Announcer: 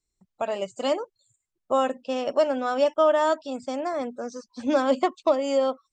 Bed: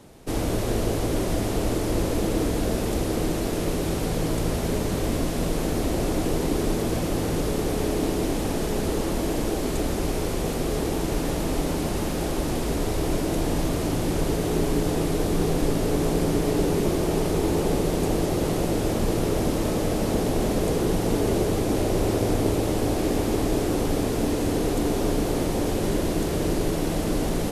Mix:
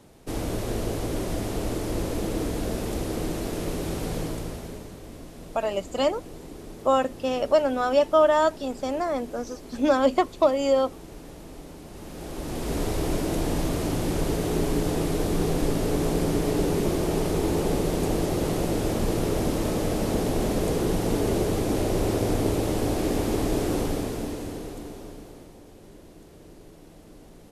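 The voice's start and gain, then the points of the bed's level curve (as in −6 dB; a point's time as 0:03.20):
5.15 s, +1.5 dB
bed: 0:04.18 −4 dB
0:04.99 −17 dB
0:11.86 −17 dB
0:12.78 −1.5 dB
0:23.78 −1.5 dB
0:25.63 −24 dB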